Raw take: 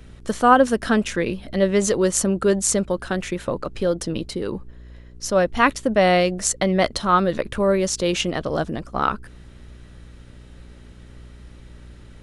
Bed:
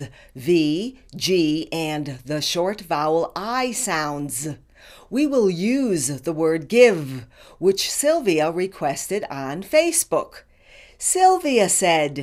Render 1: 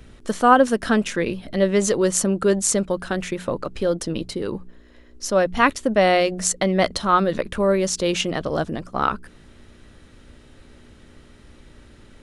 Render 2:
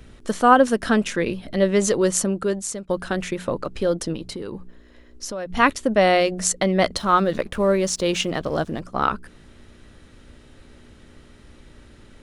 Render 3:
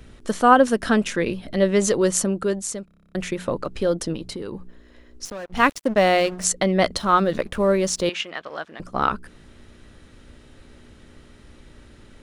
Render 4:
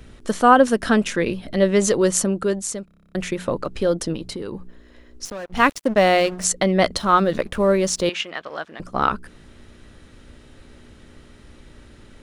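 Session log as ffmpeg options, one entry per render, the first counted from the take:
-af "bandreject=f=60:t=h:w=4,bandreject=f=120:t=h:w=4,bandreject=f=180:t=h:w=4"
-filter_complex "[0:a]asettb=1/sr,asplit=3[s0][s1][s2];[s0]atrim=end=4.154[s3];[s1]atrim=start=4.15:end=5.5,asetpts=PTS-STARTPTS,afade=t=in:d=0.004:c=qsin,afade=t=out:st=1.346:d=0.004:c=qsin,acompressor=threshold=0.0447:ratio=6:attack=3.2:release=140:knee=1:detection=peak[s4];[s2]atrim=start=5.496[s5];[s3][s4]acrossfade=d=0.004:c1=hsin:c2=qsin[s6];[s6][s5]acrossfade=d=0.004:c1=qsin:c2=hsin,asettb=1/sr,asplit=3[s7][s8][s9];[s7]atrim=end=6.964[s10];[s8]atrim=start=6.96:end=8.8,asetpts=PTS-STARTPTS,afade=t=in:d=0.004:c=qsin,afade=t=out:st=1.836:d=0.004:c=qsin,aeval=exprs='sgn(val(0))*max(abs(val(0))-0.00355,0)':c=same[s11];[s9]atrim=start=8.796[s12];[s10][s11]acrossfade=d=0.004:c1=hsin:c2=qsin[s13];[s13][s12]acrossfade=d=0.004:c1=qsin:c2=hsin,asplit=2[s14][s15];[s14]atrim=end=2.89,asetpts=PTS-STARTPTS,afade=t=out:st=2.09:d=0.8:silence=0.149624[s16];[s15]atrim=start=2.89,asetpts=PTS-STARTPTS,afade=t=in:d=0.004:c=hsin:silence=0.149624[s17];[s16][s17]concat=n=2:v=0:a=1"
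-filter_complex "[0:a]asettb=1/sr,asplit=3[s0][s1][s2];[s0]atrim=end=5.254[s3];[s1]atrim=start=5.25:end=6.44,asetpts=PTS-STARTPTS,afade=t=in:d=0.004:c=qsin,afade=t=out:st=1.186:d=0.004:c=qsin,aeval=exprs='sgn(val(0))*max(abs(val(0))-0.0168,0)':c=same[s4];[s2]atrim=start=6.436[s5];[s3][s4]acrossfade=d=0.004:c1=hsin:c2=qsin[s6];[s6][s5]acrossfade=d=0.004:c1=qsin:c2=hsin,asettb=1/sr,asplit=3[s7][s8][s9];[s7]atrim=end=8.094[s10];[s8]atrim=start=8.09:end=8.8,asetpts=PTS-STARTPTS,afade=t=in:d=0.004:c=qsin,afade=t=out:st=0.706:d=0.004:c=qsin,bandpass=f=1900:t=q:w=0.99[s11];[s9]atrim=start=8.796[s12];[s10][s11]acrossfade=d=0.004:c1=hsin:c2=qsin[s13];[s13][s12]acrossfade=d=0.004:c1=qsin:c2=hsin,asplit=11[s14][s15][s16][s17][s18][s19][s20][s21][s22][s23][s24];[s14]atrim=end=2.882[s25];[s15]atrim=start=2.848:end=2.882[s26];[s16]atrim=start=2.848:end=2.882[s27];[s17]atrim=start=2.848:end=2.882[s28];[s18]atrim=start=2.848:end=2.882[s29];[s19]atrim=start=2.848:end=2.882[s30];[s20]atrim=start=2.848:end=2.882[s31];[s21]atrim=start=2.848:end=2.882[s32];[s22]atrim=start=2.848:end=2.882[s33];[s23]atrim=start=2.848:end=2.882[s34];[s24]atrim=start=3.148[s35];[s25][s26]acrossfade=d=0.004:c1=hsin:c2=hsin[s36];[s36][s27]acrossfade=d=0.004:c1=hsin:c2=hsin[s37];[s37][s28]acrossfade=d=0.004:c1=hsin:c2=hsin[s38];[s38][s29]acrossfade=d=0.004:c1=hsin:c2=hsin[s39];[s39][s30]acrossfade=d=0.004:c1=hsin:c2=hsin[s40];[s40][s31]acrossfade=d=0.004:c1=hsin:c2=hsin[s41];[s41][s32]acrossfade=d=0.004:c1=hsin:c2=hsin[s42];[s42][s33]acrossfade=d=0.004:c1=hsin:c2=hsin[s43];[s43][s34]acrossfade=d=0.004:c1=hsin:c2=hsin[s44];[s44][s35]acrossfade=d=0.004:c1=hsin:c2=hsin"
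-af "volume=1.19,alimiter=limit=0.794:level=0:latency=1"

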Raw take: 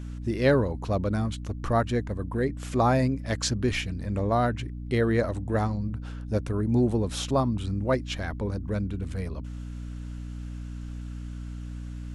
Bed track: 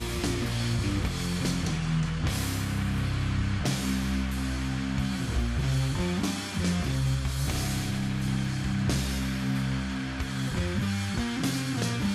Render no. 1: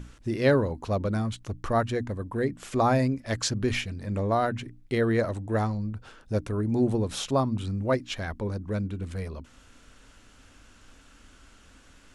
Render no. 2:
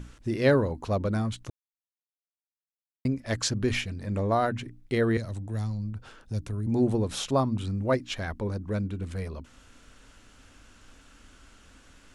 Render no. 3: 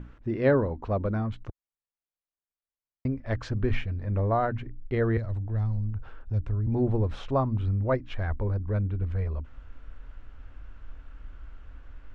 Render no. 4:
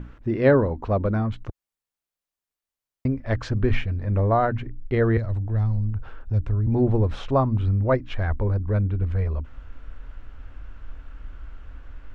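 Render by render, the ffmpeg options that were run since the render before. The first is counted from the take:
-af "bandreject=f=60:t=h:w=6,bandreject=f=120:t=h:w=6,bandreject=f=180:t=h:w=6,bandreject=f=240:t=h:w=6,bandreject=f=300:t=h:w=6"
-filter_complex "[0:a]asettb=1/sr,asplit=3[s0][s1][s2];[s0]atrim=end=5.174[s3];[s1]atrim=start=5.17:end=6.67,asetpts=PTS-STARTPTS,afade=t=in:d=0.004:c=qsin,afade=t=out:st=1.496:d=0.004:c=qsin,acrossover=split=190|3000[s4][s5][s6];[s5]acompressor=threshold=0.00708:ratio=4:attack=3.2:release=140:knee=2.83:detection=peak[s7];[s4][s7][s6]amix=inputs=3:normalize=0[s8];[s2]atrim=start=6.666[s9];[s3][s8]acrossfade=d=0.004:c1=hsin:c2=qsin[s10];[s10][s9]acrossfade=d=0.004:c1=qsin:c2=hsin,asplit=3[s11][s12][s13];[s11]atrim=end=1.5,asetpts=PTS-STARTPTS,afade=t=out:st=1.496:d=0.004:c=hsin[s14];[s12]atrim=start=1.5:end=3.05,asetpts=PTS-STARTPTS,volume=0[s15];[s13]atrim=start=3.05,asetpts=PTS-STARTPTS,afade=t=in:d=0.004:c=hsin[s16];[s14][s15][s16]concat=n=3:v=0:a=1"
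-af "lowpass=1800,asubboost=boost=6.5:cutoff=71"
-af "volume=1.78"

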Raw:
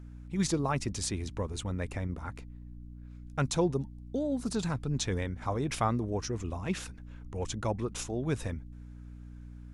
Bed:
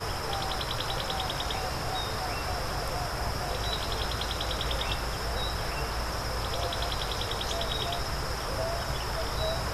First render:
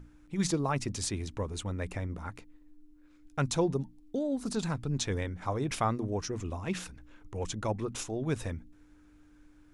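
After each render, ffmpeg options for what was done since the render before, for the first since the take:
-af "bandreject=f=60:t=h:w=6,bandreject=f=120:t=h:w=6,bandreject=f=180:t=h:w=6,bandreject=f=240:t=h:w=6"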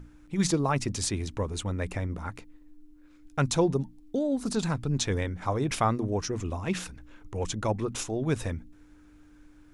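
-af "volume=1.58"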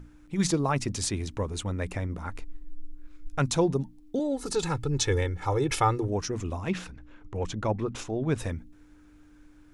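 -filter_complex "[0:a]asplit=3[s0][s1][s2];[s0]afade=t=out:st=2.29:d=0.02[s3];[s1]asubboost=boost=10.5:cutoff=50,afade=t=in:st=2.29:d=0.02,afade=t=out:st=3.39:d=0.02[s4];[s2]afade=t=in:st=3.39:d=0.02[s5];[s3][s4][s5]amix=inputs=3:normalize=0,asettb=1/sr,asplit=3[s6][s7][s8];[s6]atrim=end=4.194[s9];[s7]atrim=start=4.19:end=6.08,asetpts=PTS-STARTPTS,afade=t=in:d=0.004:c=qsin,afade=t=out:st=1.886:d=0.004:c=qsin,aecho=1:1:2.3:0.84,atrim=end_sample=83349[s10];[s8]atrim=start=6.076[s11];[s9][s10]acrossfade=d=0.004:c1=hsin:c2=qsin[s12];[s12][s11]acrossfade=d=0.004:c1=qsin:c2=hsin,asettb=1/sr,asplit=3[s13][s14][s15];[s13]atrim=end=6.704[s16];[s14]atrim=start=6.7:end=8.38,asetpts=PTS-STARTPTS,afade=t=in:d=0.004:c=qsin,afade=t=out:st=1.676:d=0.004:c=qsin,aemphasis=mode=reproduction:type=50fm[s17];[s15]atrim=start=8.376[s18];[s16][s17]acrossfade=d=0.004:c1=hsin:c2=qsin[s19];[s19][s18]acrossfade=d=0.004:c1=qsin:c2=hsin"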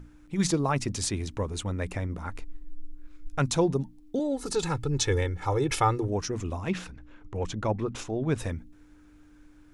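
-af anull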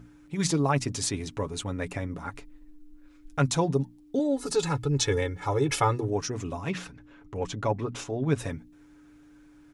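-af "highpass=f=76:p=1,aecho=1:1:7.1:0.5"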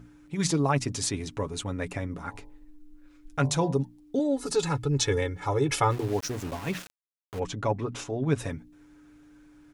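-filter_complex "[0:a]asettb=1/sr,asplit=3[s0][s1][s2];[s0]atrim=end=2.164[s3];[s1]atrim=start=2.16:end=3.78,asetpts=PTS-STARTPTS,afade=t=in:d=0.004:c=qsin,afade=t=out:st=1.616:d=0.004:c=qsin,bandreject=f=48.88:t=h:w=4,bandreject=f=97.76:t=h:w=4,bandreject=f=146.64:t=h:w=4,bandreject=f=195.52:t=h:w=4,bandreject=f=244.4:t=h:w=4,bandreject=f=293.28:t=h:w=4,bandreject=f=342.16:t=h:w=4,bandreject=f=391.04:t=h:w=4,bandreject=f=439.92:t=h:w=4,bandreject=f=488.8:t=h:w=4,bandreject=f=537.68:t=h:w=4,bandreject=f=586.56:t=h:w=4,bandreject=f=635.44:t=h:w=4,bandreject=f=684.32:t=h:w=4,bandreject=f=733.2:t=h:w=4,bandreject=f=782.08:t=h:w=4,bandreject=f=830.96:t=h:w=4,bandreject=f=879.84:t=h:w=4,bandreject=f=928.72:t=h:w=4,bandreject=f=977.6:t=h:w=4,bandreject=f=1026.48:t=h:w=4,bandreject=f=1075.36:t=h:w=4[s4];[s2]atrim=start=3.776[s5];[s3][s4]acrossfade=d=0.004:c1=hsin:c2=qsin[s6];[s6][s5]acrossfade=d=0.004:c1=qsin:c2=hsin,asplit=3[s7][s8][s9];[s7]afade=t=out:st=5.9:d=0.02[s10];[s8]aeval=exprs='val(0)*gte(abs(val(0)),0.015)':c=same,afade=t=in:st=5.9:d=0.02,afade=t=out:st=7.38:d=0.02[s11];[s9]afade=t=in:st=7.38:d=0.02[s12];[s10][s11][s12]amix=inputs=3:normalize=0"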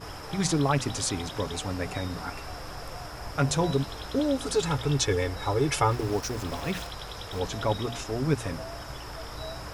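-filter_complex "[1:a]volume=0.422[s0];[0:a][s0]amix=inputs=2:normalize=0"

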